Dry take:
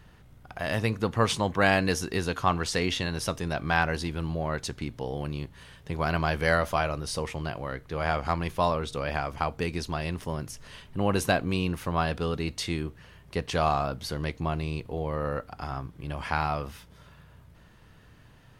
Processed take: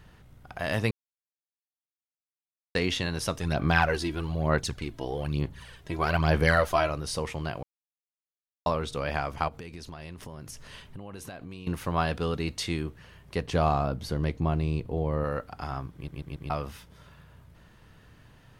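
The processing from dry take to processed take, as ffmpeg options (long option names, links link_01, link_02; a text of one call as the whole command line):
ffmpeg -i in.wav -filter_complex "[0:a]asplit=3[link_01][link_02][link_03];[link_01]afade=type=out:start_time=3.39:duration=0.02[link_04];[link_02]aphaser=in_gain=1:out_gain=1:delay=3.1:decay=0.55:speed=1.1:type=sinusoidal,afade=type=in:start_time=3.39:duration=0.02,afade=type=out:start_time=6.89:duration=0.02[link_05];[link_03]afade=type=in:start_time=6.89:duration=0.02[link_06];[link_04][link_05][link_06]amix=inputs=3:normalize=0,asettb=1/sr,asplit=3[link_07][link_08][link_09];[link_07]atrim=end=9.484[link_10];[link_08]atrim=start=9.48:end=11.67,asetpts=PTS-STARTPTS,afade=type=in:duration=0.004:curve=qsin,afade=type=out:start_time=2.186:duration=0.004:curve=qsin,acompressor=threshold=-37dB:ratio=16:attack=3.2:release=140:knee=1:detection=peak[link_11];[link_09]atrim=start=11.666[link_12];[link_10][link_11]acrossfade=duration=0.004:curve1=hsin:curve2=qsin[link_13];[link_13][link_12]acrossfade=duration=0.004:curve1=qsin:curve2=hsin,asettb=1/sr,asplit=3[link_14][link_15][link_16];[link_14]atrim=end=13.424[link_17];[link_15]atrim=start=13.42:end=15.24,asetpts=PTS-STARTPTS,afade=type=in:duration=0.004:curve=qsin,afade=type=out:start_time=1.816:duration=0.004:curve=qsin,tiltshelf=frequency=690:gain=4.5[link_18];[link_16]atrim=start=15.236[link_19];[link_17][link_18]acrossfade=duration=0.004:curve1=hsin:curve2=qsin[link_20];[link_20][link_19]acrossfade=duration=0.004:curve1=qsin:curve2=hsin,asplit=9[link_21][link_22][link_23][link_24][link_25][link_26][link_27][link_28][link_29];[link_21]atrim=end=0.91,asetpts=PTS-STARTPTS,afade=type=out:start_time=0.906:duration=0.004:curve=hsin[link_30];[link_22]atrim=start=0.91:end=2.75,asetpts=PTS-STARTPTS,volume=0[link_31];[link_23]atrim=start=2.75:end=7.63,asetpts=PTS-STARTPTS,afade=type=in:duration=0.004:curve=hsin,afade=type=out:start_time=4.876:duration=0.004:curve=hsin[link_32];[link_24]atrim=start=7.63:end=8.66,asetpts=PTS-STARTPTS,volume=0[link_33];[link_25]atrim=start=8.66:end=16.082,asetpts=PTS-STARTPTS,afade=type=in:duration=0.004:curve=hsin[link_34];[link_26]atrim=start=15.938:end=16.082[link_35];[link_27]atrim=start=15.938:end=16.082[link_36];[link_28]atrim=start=15.938:end=16.082[link_37];[link_29]atrim=start=16.498[link_38];[link_30][link_31][link_32][link_33][link_34]concat=n=5:v=0:a=1[link_39];[link_39][link_35]acrossfade=duration=0.004:curve1=hsin:curve2=hsin[link_40];[link_40][link_36]acrossfade=duration=0.004:curve1=hsin:curve2=hsin[link_41];[link_41][link_37]acrossfade=duration=0.004:curve1=hsin:curve2=hsin[link_42];[link_42][link_38]acrossfade=duration=0.004:curve1=hsin:curve2=hsin" out.wav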